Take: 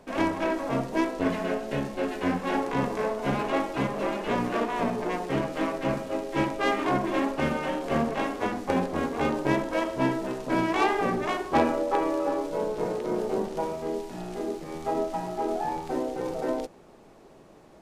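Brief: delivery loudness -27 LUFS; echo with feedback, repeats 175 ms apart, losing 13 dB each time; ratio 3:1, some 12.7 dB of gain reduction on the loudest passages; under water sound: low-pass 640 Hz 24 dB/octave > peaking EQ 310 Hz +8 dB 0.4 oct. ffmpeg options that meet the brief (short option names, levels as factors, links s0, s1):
-af "acompressor=threshold=0.0141:ratio=3,lowpass=f=640:w=0.5412,lowpass=f=640:w=1.3066,equalizer=f=310:t=o:w=0.4:g=8,aecho=1:1:175|350|525:0.224|0.0493|0.0108,volume=2.82"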